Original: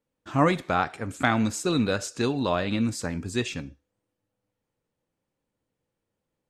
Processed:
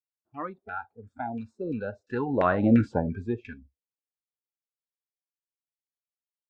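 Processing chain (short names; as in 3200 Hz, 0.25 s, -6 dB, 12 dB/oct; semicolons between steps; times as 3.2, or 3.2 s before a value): Doppler pass-by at 2.79, 11 m/s, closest 2.3 m; LFO low-pass saw down 2.9 Hz 520–1900 Hz; spectral noise reduction 23 dB; gain +5.5 dB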